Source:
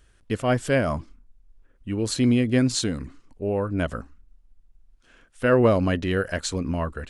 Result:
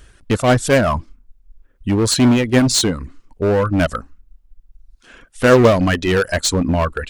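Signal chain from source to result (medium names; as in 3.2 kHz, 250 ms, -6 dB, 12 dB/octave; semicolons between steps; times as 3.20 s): reverb removal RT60 1.5 s; in parallel at -3 dB: wavefolder -26 dBFS; on the sum: trim +8.5 dB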